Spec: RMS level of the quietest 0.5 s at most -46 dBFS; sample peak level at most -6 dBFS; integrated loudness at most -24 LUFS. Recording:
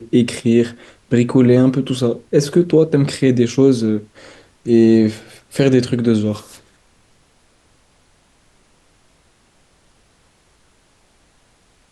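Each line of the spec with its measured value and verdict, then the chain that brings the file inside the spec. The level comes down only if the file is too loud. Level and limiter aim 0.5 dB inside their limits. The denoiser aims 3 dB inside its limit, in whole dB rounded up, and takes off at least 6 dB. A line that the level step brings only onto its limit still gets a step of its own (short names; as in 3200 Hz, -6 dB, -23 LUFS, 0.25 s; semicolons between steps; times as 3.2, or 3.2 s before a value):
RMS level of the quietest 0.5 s -56 dBFS: OK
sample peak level -2.5 dBFS: fail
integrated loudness -15.5 LUFS: fail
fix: gain -9 dB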